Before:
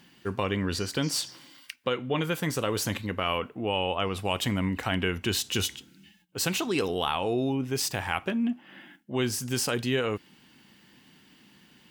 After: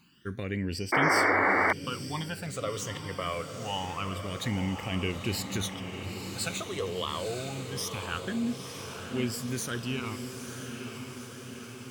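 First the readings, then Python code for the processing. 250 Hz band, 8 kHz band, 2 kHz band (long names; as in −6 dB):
−3.0 dB, −4.0 dB, +3.5 dB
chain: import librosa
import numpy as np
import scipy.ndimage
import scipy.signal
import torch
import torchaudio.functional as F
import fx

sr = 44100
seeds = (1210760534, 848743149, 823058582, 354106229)

y = fx.phaser_stages(x, sr, stages=12, low_hz=250.0, high_hz=1300.0, hz=0.25, feedback_pct=25)
y = fx.echo_diffused(y, sr, ms=931, feedback_pct=66, wet_db=-7)
y = fx.spec_paint(y, sr, seeds[0], shape='noise', start_s=0.92, length_s=0.81, low_hz=250.0, high_hz=2300.0, level_db=-21.0)
y = F.gain(torch.from_numpy(y), -3.0).numpy()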